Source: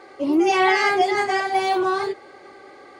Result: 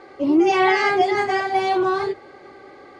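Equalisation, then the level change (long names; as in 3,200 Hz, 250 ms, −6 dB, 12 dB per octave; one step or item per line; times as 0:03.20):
high-frequency loss of the air 60 metres
low-shelf EQ 200 Hz +9 dB
mains-hum notches 50/100 Hz
0.0 dB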